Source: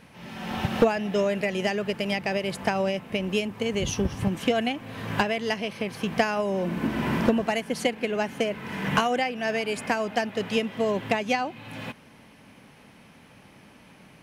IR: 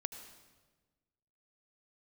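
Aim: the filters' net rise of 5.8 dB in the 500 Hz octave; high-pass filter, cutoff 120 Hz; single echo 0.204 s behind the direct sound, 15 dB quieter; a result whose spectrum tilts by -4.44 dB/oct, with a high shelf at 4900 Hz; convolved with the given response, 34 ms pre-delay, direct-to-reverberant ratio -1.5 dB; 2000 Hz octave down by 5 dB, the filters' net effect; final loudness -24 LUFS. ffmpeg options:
-filter_complex "[0:a]highpass=120,equalizer=f=500:t=o:g=7.5,equalizer=f=2k:t=o:g=-7.5,highshelf=f=4.9k:g=3.5,aecho=1:1:204:0.178,asplit=2[a][b];[1:a]atrim=start_sample=2205,adelay=34[c];[b][c]afir=irnorm=-1:irlink=0,volume=2.5dB[d];[a][d]amix=inputs=2:normalize=0,volume=-4dB"

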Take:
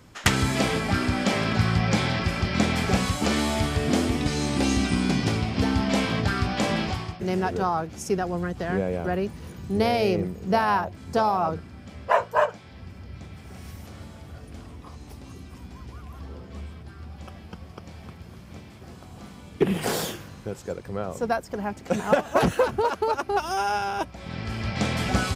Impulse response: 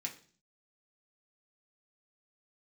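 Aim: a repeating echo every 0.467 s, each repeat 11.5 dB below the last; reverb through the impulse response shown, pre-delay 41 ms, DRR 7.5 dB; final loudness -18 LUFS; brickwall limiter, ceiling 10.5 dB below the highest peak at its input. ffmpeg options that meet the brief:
-filter_complex "[0:a]alimiter=limit=-16.5dB:level=0:latency=1,aecho=1:1:467|934|1401:0.266|0.0718|0.0194,asplit=2[a][b];[1:a]atrim=start_sample=2205,adelay=41[c];[b][c]afir=irnorm=-1:irlink=0,volume=-7dB[d];[a][d]amix=inputs=2:normalize=0,volume=9dB"

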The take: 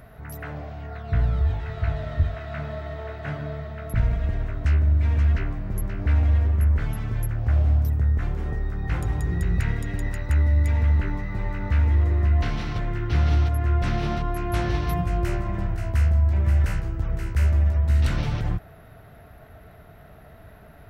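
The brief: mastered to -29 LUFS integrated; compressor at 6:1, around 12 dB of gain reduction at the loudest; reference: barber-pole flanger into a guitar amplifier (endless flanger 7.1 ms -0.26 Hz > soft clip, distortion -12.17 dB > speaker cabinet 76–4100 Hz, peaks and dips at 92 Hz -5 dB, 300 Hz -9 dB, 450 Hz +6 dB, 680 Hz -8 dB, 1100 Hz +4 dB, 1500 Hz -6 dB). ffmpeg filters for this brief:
-filter_complex "[0:a]acompressor=threshold=-29dB:ratio=6,asplit=2[a][b];[b]adelay=7.1,afreqshift=-0.26[c];[a][c]amix=inputs=2:normalize=1,asoftclip=threshold=-33.5dB,highpass=76,equalizer=f=92:t=q:w=4:g=-5,equalizer=f=300:t=q:w=4:g=-9,equalizer=f=450:t=q:w=4:g=6,equalizer=f=680:t=q:w=4:g=-8,equalizer=f=1.1k:t=q:w=4:g=4,equalizer=f=1.5k:t=q:w=4:g=-6,lowpass=f=4.1k:w=0.5412,lowpass=f=4.1k:w=1.3066,volume=15.5dB"

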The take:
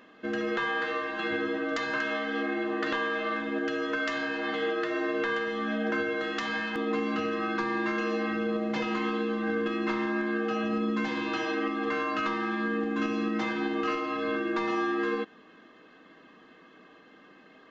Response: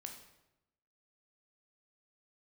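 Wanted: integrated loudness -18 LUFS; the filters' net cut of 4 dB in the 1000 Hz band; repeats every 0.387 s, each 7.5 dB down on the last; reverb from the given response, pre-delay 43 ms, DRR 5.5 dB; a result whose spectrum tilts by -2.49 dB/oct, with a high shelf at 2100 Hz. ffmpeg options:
-filter_complex "[0:a]equalizer=f=1k:t=o:g=-6.5,highshelf=f=2.1k:g=5,aecho=1:1:387|774|1161|1548|1935:0.422|0.177|0.0744|0.0312|0.0131,asplit=2[a][b];[1:a]atrim=start_sample=2205,adelay=43[c];[b][c]afir=irnorm=-1:irlink=0,volume=-1.5dB[d];[a][d]amix=inputs=2:normalize=0,volume=9.5dB"

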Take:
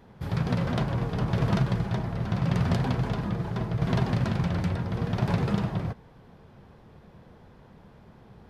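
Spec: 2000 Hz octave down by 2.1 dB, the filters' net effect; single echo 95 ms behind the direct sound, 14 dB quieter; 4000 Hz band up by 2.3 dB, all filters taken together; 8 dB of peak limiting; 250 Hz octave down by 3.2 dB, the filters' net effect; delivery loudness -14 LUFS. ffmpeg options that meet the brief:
-af "equalizer=f=250:t=o:g=-5.5,equalizer=f=2k:t=o:g=-3.5,equalizer=f=4k:t=o:g=4,alimiter=limit=-21dB:level=0:latency=1,aecho=1:1:95:0.2,volume=17dB"

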